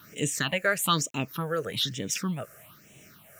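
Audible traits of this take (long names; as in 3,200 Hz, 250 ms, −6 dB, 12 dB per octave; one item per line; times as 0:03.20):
tremolo triangle 2.4 Hz, depth 45%
a quantiser's noise floor 10 bits, dither none
phaser sweep stages 6, 1.1 Hz, lowest notch 240–1,300 Hz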